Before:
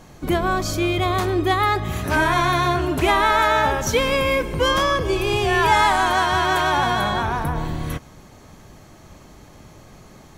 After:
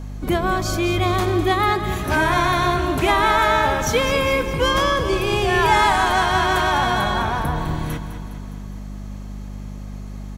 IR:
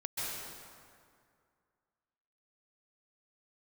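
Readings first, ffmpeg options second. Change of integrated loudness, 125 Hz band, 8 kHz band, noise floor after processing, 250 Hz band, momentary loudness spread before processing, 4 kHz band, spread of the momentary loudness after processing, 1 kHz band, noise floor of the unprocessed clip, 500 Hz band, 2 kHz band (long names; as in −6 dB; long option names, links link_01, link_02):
+0.5 dB, +1.5 dB, +0.5 dB, −32 dBFS, +1.0 dB, 7 LU, +0.5 dB, 18 LU, +0.5 dB, −46 dBFS, +0.5 dB, +0.5 dB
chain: -af "aeval=exprs='val(0)+0.0316*(sin(2*PI*50*n/s)+sin(2*PI*2*50*n/s)/2+sin(2*PI*3*50*n/s)/3+sin(2*PI*4*50*n/s)/4+sin(2*PI*5*50*n/s)/5)':channel_layout=same,aecho=1:1:205|410|615|820|1025|1230|1435:0.282|0.163|0.0948|0.055|0.0319|0.0185|0.0107"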